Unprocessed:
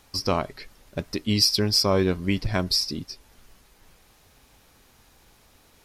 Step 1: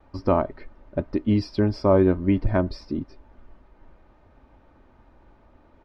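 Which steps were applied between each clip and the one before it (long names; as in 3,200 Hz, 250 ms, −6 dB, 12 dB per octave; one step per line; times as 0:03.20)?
noise gate with hold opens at −48 dBFS
low-pass filter 1,100 Hz 12 dB per octave
comb filter 3.3 ms, depth 40%
level +4 dB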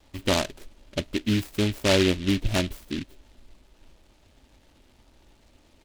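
short delay modulated by noise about 2,700 Hz, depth 0.18 ms
level −3 dB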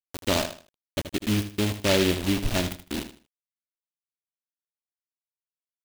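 hum with harmonics 100 Hz, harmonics 4, −43 dBFS −4 dB per octave
bit reduction 5 bits
repeating echo 78 ms, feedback 27%, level −11 dB
level −1.5 dB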